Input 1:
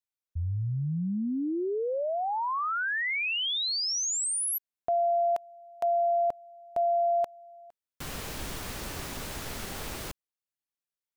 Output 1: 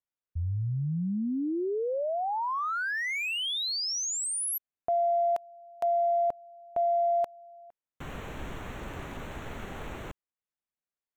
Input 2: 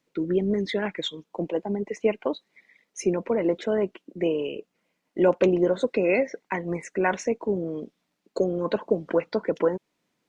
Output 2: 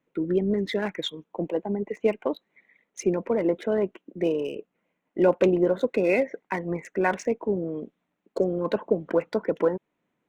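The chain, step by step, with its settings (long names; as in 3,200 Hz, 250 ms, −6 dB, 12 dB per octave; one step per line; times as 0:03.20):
adaptive Wiener filter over 9 samples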